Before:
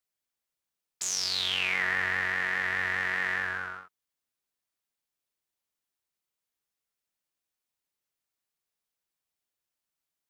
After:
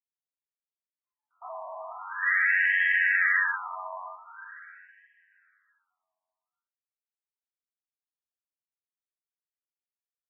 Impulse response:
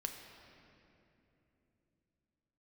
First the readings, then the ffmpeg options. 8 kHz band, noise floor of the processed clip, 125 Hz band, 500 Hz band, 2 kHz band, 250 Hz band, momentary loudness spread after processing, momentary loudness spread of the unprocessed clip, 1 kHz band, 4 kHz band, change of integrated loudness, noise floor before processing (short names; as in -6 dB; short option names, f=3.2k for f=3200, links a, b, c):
under -40 dB, under -85 dBFS, under -40 dB, 0.0 dB, +4.5 dB, under -40 dB, 19 LU, 9 LU, +2.0 dB, -17.0 dB, +5.0 dB, under -85 dBFS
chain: -filter_complex "[0:a]agate=range=-33dB:threshold=-30dB:ratio=3:detection=peak,lowshelf=f=340:g=-10.5,aecho=1:1:3.1:0.64,acompressor=threshold=-33dB:ratio=2.5,aeval=exprs='0.1*(cos(1*acos(clip(val(0)/0.1,-1,1)))-cos(1*PI/2))+0.0316*(cos(5*acos(clip(val(0)/0.1,-1,1)))-cos(5*PI/2))+0.0282*(cos(6*acos(clip(val(0)/0.1,-1,1)))-cos(6*PI/2))':c=same,acrossover=split=170|2900[a][b][c];[c]adelay=290[d];[b]adelay=400[e];[a][e][d]amix=inputs=3:normalize=0,asplit=2[f][g];[1:a]atrim=start_sample=2205[h];[g][h]afir=irnorm=-1:irlink=0,volume=3.5dB[i];[f][i]amix=inputs=2:normalize=0,afftfilt=real='re*between(b*sr/1024,840*pow(2300/840,0.5+0.5*sin(2*PI*0.44*pts/sr))/1.41,840*pow(2300/840,0.5+0.5*sin(2*PI*0.44*pts/sr))*1.41)':imag='im*between(b*sr/1024,840*pow(2300/840,0.5+0.5*sin(2*PI*0.44*pts/sr))/1.41,840*pow(2300/840,0.5+0.5*sin(2*PI*0.44*pts/sr))*1.41)':win_size=1024:overlap=0.75"